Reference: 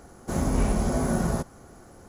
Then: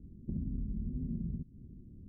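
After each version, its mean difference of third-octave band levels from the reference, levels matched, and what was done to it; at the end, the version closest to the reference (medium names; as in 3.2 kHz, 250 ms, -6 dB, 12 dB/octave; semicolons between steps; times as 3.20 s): 18.0 dB: inverse Chebyshev low-pass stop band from 850 Hz, stop band 60 dB; compression 6:1, threshold -36 dBFS, peak gain reduction 15.5 dB; trim +1.5 dB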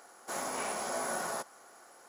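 9.5 dB: high-pass 780 Hz 12 dB/octave; band-stop 6.2 kHz, Q 19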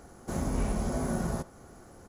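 1.5 dB: in parallel at -2 dB: compression, threshold -34 dBFS, peak gain reduction 15 dB; on the sum: speakerphone echo 80 ms, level -17 dB; trim -7.5 dB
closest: third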